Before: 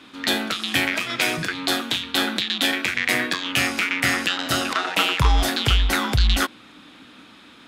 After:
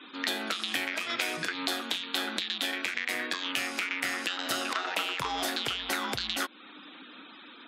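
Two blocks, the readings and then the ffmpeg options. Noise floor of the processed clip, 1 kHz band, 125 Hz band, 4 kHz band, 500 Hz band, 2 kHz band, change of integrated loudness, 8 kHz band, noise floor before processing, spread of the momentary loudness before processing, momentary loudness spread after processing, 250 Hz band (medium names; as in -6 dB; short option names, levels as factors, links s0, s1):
-50 dBFS, -8.5 dB, -25.5 dB, -8.5 dB, -9.0 dB, -9.0 dB, -9.5 dB, -8.5 dB, -48 dBFS, 4 LU, 15 LU, -11.5 dB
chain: -af "highpass=290,afftfilt=real='re*gte(hypot(re,im),0.00447)':imag='im*gte(hypot(re,im),0.00447)':win_size=1024:overlap=0.75,acompressor=threshold=0.0398:ratio=6"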